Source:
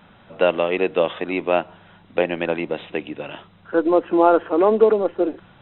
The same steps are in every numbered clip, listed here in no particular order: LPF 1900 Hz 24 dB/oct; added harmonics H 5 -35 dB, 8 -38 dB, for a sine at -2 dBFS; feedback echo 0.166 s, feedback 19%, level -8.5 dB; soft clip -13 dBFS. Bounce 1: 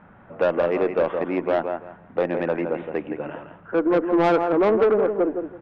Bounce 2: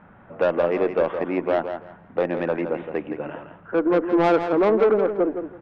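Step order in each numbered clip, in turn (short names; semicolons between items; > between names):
LPF > added harmonics > feedback echo > soft clip; LPF > added harmonics > soft clip > feedback echo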